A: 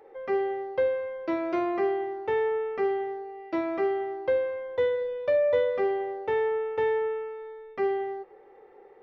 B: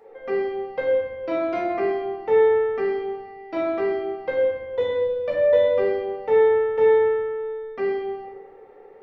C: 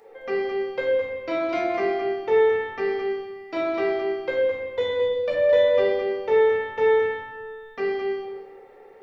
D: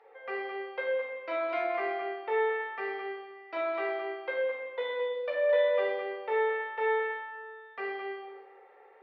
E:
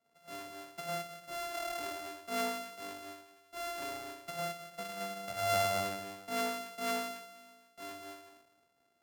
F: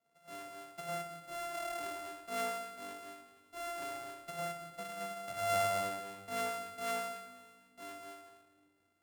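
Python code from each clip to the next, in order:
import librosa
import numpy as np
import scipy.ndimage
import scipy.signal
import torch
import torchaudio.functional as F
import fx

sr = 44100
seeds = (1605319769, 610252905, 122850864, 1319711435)

y1 = fx.room_shoebox(x, sr, seeds[0], volume_m3=360.0, walls='mixed', distance_m=1.7)
y2 = fx.high_shelf(y1, sr, hz=2400.0, db=11.0)
y2 = y2 + 10.0 ** (-8.0 / 20.0) * np.pad(y2, (int(215 * sr / 1000.0), 0))[:len(y2)]
y2 = y2 * 10.0 ** (-2.0 / 20.0)
y3 = scipy.signal.sosfilt(scipy.signal.butter(2, 770.0, 'highpass', fs=sr, output='sos'), y2)
y3 = fx.air_absorb(y3, sr, metres=360.0)
y4 = np.r_[np.sort(y3[:len(y3) // 64 * 64].reshape(-1, 64), axis=1).ravel(), y3[len(y3) // 64 * 64:]]
y4 = fx.band_widen(y4, sr, depth_pct=40)
y4 = y4 * 10.0 ** (-8.0 / 20.0)
y5 = fx.room_shoebox(y4, sr, seeds[1], volume_m3=3100.0, walls='mixed', distance_m=0.76)
y5 = y5 * 10.0 ** (-3.5 / 20.0)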